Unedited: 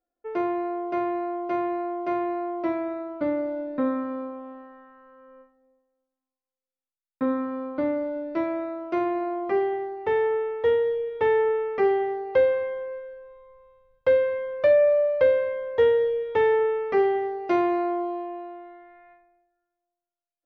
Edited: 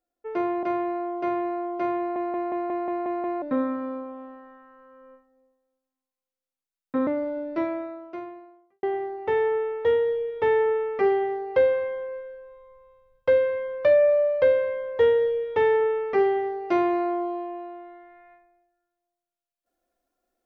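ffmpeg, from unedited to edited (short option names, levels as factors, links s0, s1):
-filter_complex "[0:a]asplit=12[s0][s1][s2][s3][s4][s5][s6][s7][s8][s9][s10][s11];[s0]atrim=end=0.632[s12];[s1]atrim=start=0.898:end=2.432[s13];[s2]atrim=start=2.248:end=2.432[s14];[s3]atrim=start=2.248:end=2.432[s15];[s4]atrim=start=2.248:end=2.432[s16];[s5]atrim=start=2.248:end=2.432[s17];[s6]atrim=start=2.248:end=2.432[s18];[s7]atrim=start=2.248:end=2.432[s19];[s8]atrim=start=2.248:end=2.432[s20];[s9]atrim=start=3.688:end=7.342[s21];[s10]atrim=start=7.858:end=9.62,asetpts=PTS-STARTPTS,afade=t=out:st=0.572:d=1.19:c=qua[s22];[s11]atrim=start=9.62,asetpts=PTS-STARTPTS,afade=t=in:d=0.004:c=hsin[s23];[s12][s13]acrossfade=d=0.004:c1=hsin:c2=hsin[s24];[s24][s14]acrossfade=d=0.004:c1=hsin:c2=hsin[s25];[s25][s15]acrossfade=d=0.004:c1=hsin:c2=hsin[s26];[s26][s16]acrossfade=d=0.004:c1=hsin:c2=hsin[s27];[s27][s17]acrossfade=d=0.004:c1=hsin:c2=hsin[s28];[s28][s18]acrossfade=d=0.004:c1=hsin:c2=hsin[s29];[s29][s19]acrossfade=d=0.004:c1=hsin:c2=hsin[s30];[s30][s20]acrossfade=d=0.004:c1=hsin:c2=hsin[s31];[s31][s21]acrossfade=d=0.004:c1=hsin:c2=hsin[s32];[s22][s23]concat=n=2:v=0:a=1[s33];[s32][s33]acrossfade=d=0.004:c1=hsin:c2=hsin"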